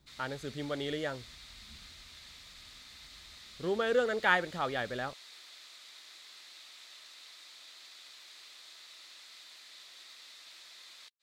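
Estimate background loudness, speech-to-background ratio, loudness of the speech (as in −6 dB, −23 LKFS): −50.0 LKFS, 17.0 dB, −33.0 LKFS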